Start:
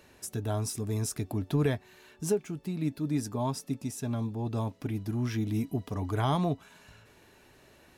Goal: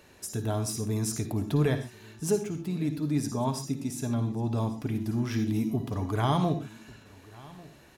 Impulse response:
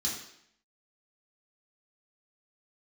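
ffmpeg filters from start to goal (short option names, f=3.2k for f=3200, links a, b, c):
-filter_complex "[0:a]aecho=1:1:1144:0.0794,asplit=2[a][b];[1:a]atrim=start_sample=2205,afade=t=out:st=0.14:d=0.01,atrim=end_sample=6615,adelay=53[c];[b][c]afir=irnorm=-1:irlink=0,volume=-12.5dB[d];[a][d]amix=inputs=2:normalize=0,volume=1.5dB"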